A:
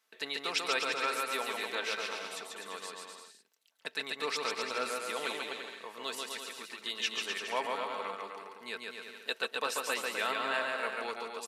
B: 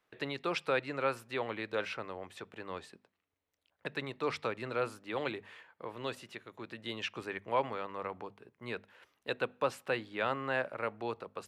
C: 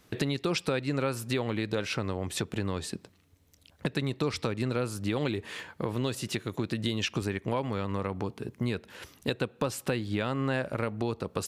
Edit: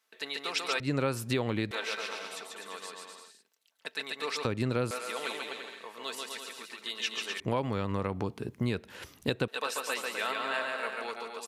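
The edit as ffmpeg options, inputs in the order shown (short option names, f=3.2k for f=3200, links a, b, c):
-filter_complex "[2:a]asplit=3[a][b][c];[0:a]asplit=4[d][e][f][g];[d]atrim=end=0.802[h];[a]atrim=start=0.798:end=1.712[i];[e]atrim=start=1.708:end=4.452[j];[b]atrim=start=4.448:end=4.912[k];[f]atrim=start=4.908:end=7.402[l];[c]atrim=start=7.398:end=9.482[m];[g]atrim=start=9.478[n];[h][i]acrossfade=d=0.004:c1=hsin:c2=hsin[o];[o][j]acrossfade=d=0.004:c1=hsin:c2=hsin[p];[p][k]acrossfade=d=0.004:c1=hsin:c2=hsin[q];[q][l]acrossfade=d=0.004:c1=hsin:c2=hsin[r];[r][m]acrossfade=d=0.004:c1=hsin:c2=hsin[s];[s][n]acrossfade=d=0.004:c1=hsin:c2=hsin"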